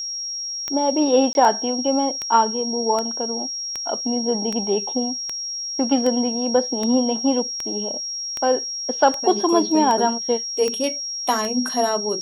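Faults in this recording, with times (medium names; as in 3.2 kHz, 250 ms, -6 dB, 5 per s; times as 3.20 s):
tick 78 rpm -12 dBFS
whine 5.6 kHz -26 dBFS
1.33–1.35 s: dropout 21 ms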